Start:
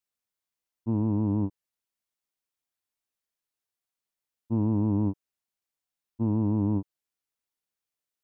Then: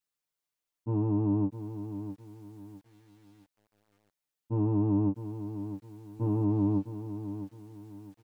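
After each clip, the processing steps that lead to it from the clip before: comb 6.7 ms, depth 98%; lo-fi delay 0.658 s, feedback 35%, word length 9-bit, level -10.5 dB; gain -3 dB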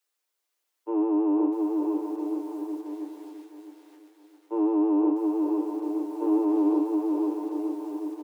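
steep high-pass 300 Hz 96 dB/oct; on a send: bouncing-ball echo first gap 0.5 s, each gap 0.85×, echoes 5; on the sum: gain +7.5 dB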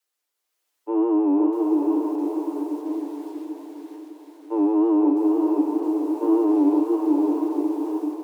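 AGC gain up to 4 dB; wow and flutter 74 cents; diffused feedback echo 0.653 s, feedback 41%, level -7 dB

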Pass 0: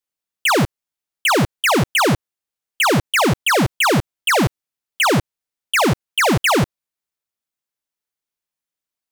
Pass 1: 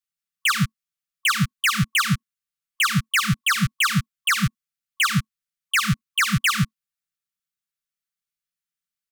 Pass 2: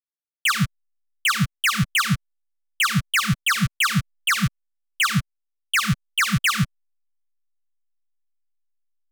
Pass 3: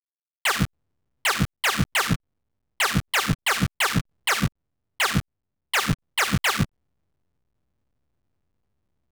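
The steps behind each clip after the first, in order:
comb 5.9 ms, depth 42%; FFT band-reject 220–1100 Hz; gain -3.5 dB
backlash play -45 dBFS
cycle switcher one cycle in 3, muted

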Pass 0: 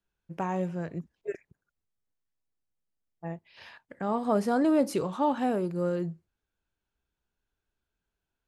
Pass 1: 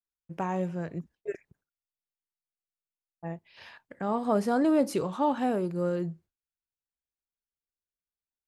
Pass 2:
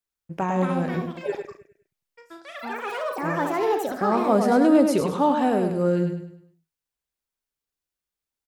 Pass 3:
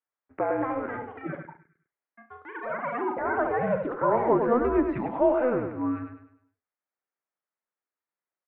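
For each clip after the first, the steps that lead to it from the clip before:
gate with hold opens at -54 dBFS
on a send: feedback echo 0.102 s, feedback 38%, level -6 dB; on the sum: echoes that change speed 0.344 s, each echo +6 st, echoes 3, each echo -6 dB; gain +5.5 dB
mistuned SSB -250 Hz 580–2300 Hz; gain +1.5 dB

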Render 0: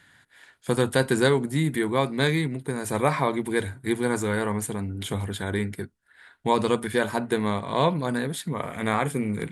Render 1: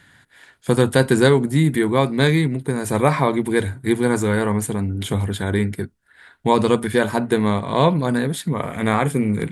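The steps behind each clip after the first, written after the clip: low shelf 410 Hz +4.5 dB; gain +4 dB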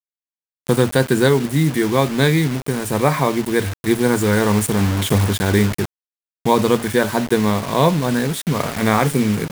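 bit-crush 5-bit; AGC; gain -1 dB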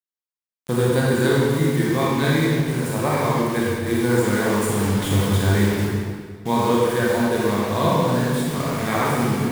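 reverb RT60 1.8 s, pre-delay 25 ms, DRR -5.5 dB; gain -9 dB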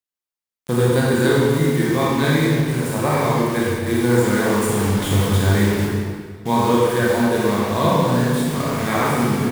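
doubler 33 ms -11 dB; gain +1.5 dB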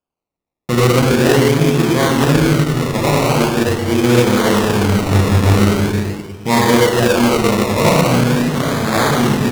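decimation with a swept rate 22×, swing 60% 0.42 Hz; Doppler distortion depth 0.25 ms; gain +4.5 dB

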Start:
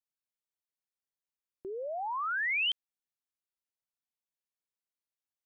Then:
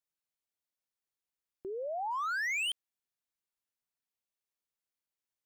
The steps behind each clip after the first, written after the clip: overloaded stage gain 31.5 dB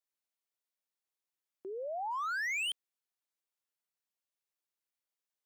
HPF 280 Hz; gain -1.5 dB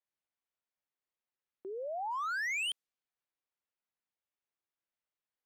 low-pass opened by the level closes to 2800 Hz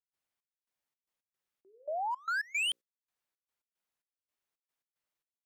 notches 60/120/180/240/300/360/420/480/540 Hz; step gate ".xx..xx.x" 112 bpm -24 dB; gain +3.5 dB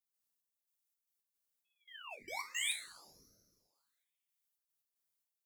differentiator; two-slope reverb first 0.39 s, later 1.9 s, from -18 dB, DRR 1 dB; ring modulator with a swept carrier 1700 Hz, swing 75%, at 0.59 Hz; gain +3 dB

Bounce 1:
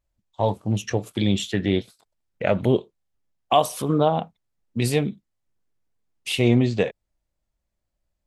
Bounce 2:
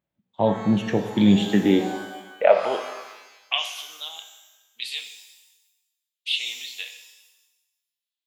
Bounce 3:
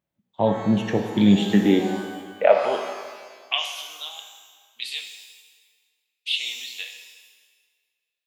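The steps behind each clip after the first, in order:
high-pass sweep 170 Hz -> 3700 Hz, 1.4–3.99; band shelf 7900 Hz -13.5 dB; shimmer reverb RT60 1.1 s, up +12 st, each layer -8 dB, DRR 5.5 dB
reverb RT60 1.9 s, pre-delay 38 ms, DRR 10 dB

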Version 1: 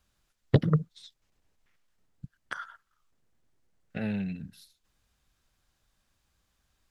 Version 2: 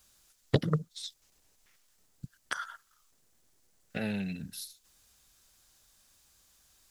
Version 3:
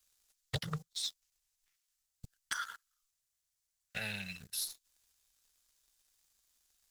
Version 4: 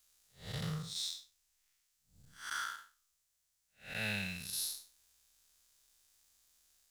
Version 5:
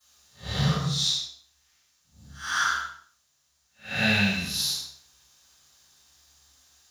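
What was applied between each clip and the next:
tone controls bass -5 dB, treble +12 dB; in parallel at +2 dB: compressor, threshold -40 dBFS, peak gain reduction 20.5 dB; on the sum: gain -2.5 dB
passive tone stack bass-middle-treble 10-0-10; sample leveller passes 3; gain -5 dB
time blur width 0.19 s; gain +5.5 dB
reverb RT60 0.50 s, pre-delay 3 ms, DRR -16 dB; gain -2 dB

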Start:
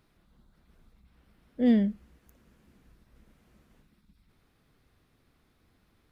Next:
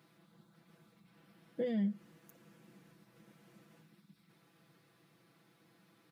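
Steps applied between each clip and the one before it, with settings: compressor 8:1, threshold -31 dBFS, peak gain reduction 13 dB; HPF 130 Hz 24 dB/oct; comb 6 ms, depth 84%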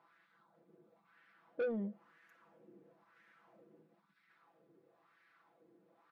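wah 1 Hz 380–1800 Hz, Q 3.1; soft clip -39.5 dBFS, distortion -9 dB; gain +8 dB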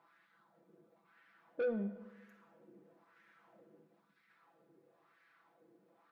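plate-style reverb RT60 1.2 s, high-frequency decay 0.75×, DRR 9.5 dB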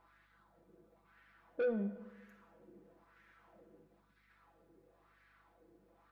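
hum 50 Hz, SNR 31 dB; gain +1 dB

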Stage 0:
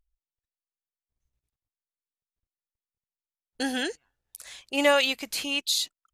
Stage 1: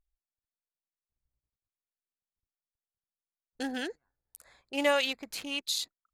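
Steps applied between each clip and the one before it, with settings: Wiener smoothing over 15 samples; gain -5 dB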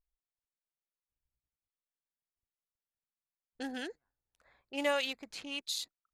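low-pass opened by the level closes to 2400 Hz, open at -30 dBFS; gain -5 dB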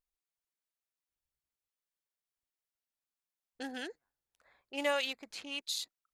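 low shelf 190 Hz -8.5 dB

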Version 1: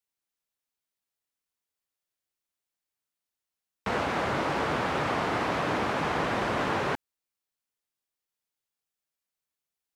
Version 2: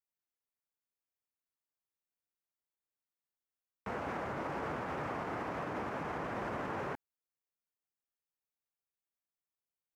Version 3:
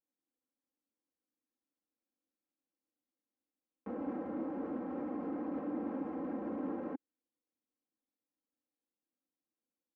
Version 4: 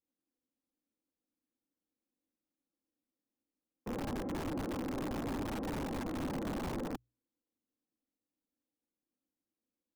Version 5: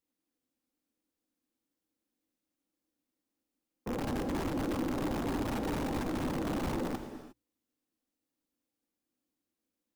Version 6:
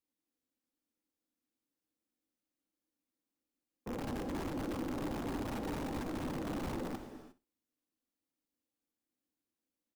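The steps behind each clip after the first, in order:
bell 9100 Hz -5.5 dB 0.98 oct; limiter -22 dBFS, peak gain reduction 5.5 dB; bell 3800 Hz -10.5 dB 1.1 oct; gain -7 dB
comb 3.8 ms, depth 91%; limiter -36 dBFS, peak gain reduction 11 dB; band-pass 300 Hz, Q 2.3; gain +12 dB
wrapped overs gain 34 dB; tilt shelf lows +6.5 dB, about 670 Hz; notches 60/120 Hz
non-linear reverb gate 0.38 s flat, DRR 7.5 dB; gain +3.5 dB
feedback echo 62 ms, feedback 18%, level -16 dB; gain -5 dB

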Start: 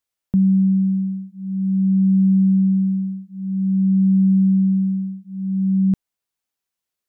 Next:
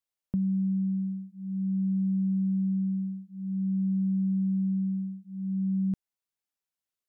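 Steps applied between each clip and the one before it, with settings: compressor, threshold -17 dBFS, peak gain reduction 4.5 dB; gain -8 dB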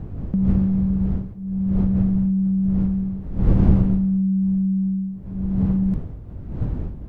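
wind noise 120 Hz -31 dBFS; gain +7 dB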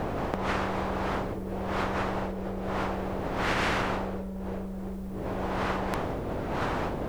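spectral compressor 10:1; gain -5 dB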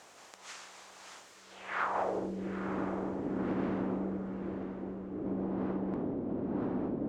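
band-pass sweep 7100 Hz -> 270 Hz, 1.34–2.3; diffused feedback echo 0.923 s, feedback 41%, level -8.5 dB; gain +3.5 dB

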